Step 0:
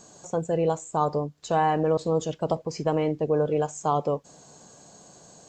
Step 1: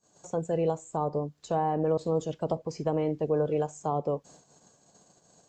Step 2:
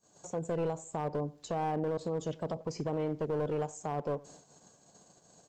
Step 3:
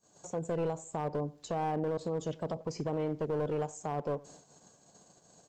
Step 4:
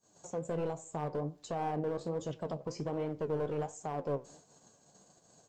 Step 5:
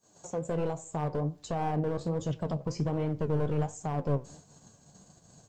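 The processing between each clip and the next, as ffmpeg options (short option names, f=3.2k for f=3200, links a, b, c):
-filter_complex "[0:a]agate=range=-26dB:threshold=-49dB:ratio=16:detection=peak,acrossover=split=450|900[a][b][c];[c]acompressor=threshold=-41dB:ratio=10[d];[a][b][d]amix=inputs=3:normalize=0,volume=-3dB"
-filter_complex "[0:a]alimiter=limit=-24dB:level=0:latency=1:release=93,aeval=exprs='clip(val(0),-1,0.0299)':c=same,asplit=2[a][b];[b]adelay=92,lowpass=f=2k:p=1,volume=-21.5dB,asplit=2[c][d];[d]adelay=92,lowpass=f=2k:p=1,volume=0.36,asplit=2[e][f];[f]adelay=92,lowpass=f=2k:p=1,volume=0.36[g];[a][c][e][g]amix=inputs=4:normalize=0"
-af anull
-af "flanger=delay=7.1:depth=9.2:regen=60:speed=1.3:shape=triangular,volume=2dB"
-af "asubboost=boost=4:cutoff=200,volume=4dB"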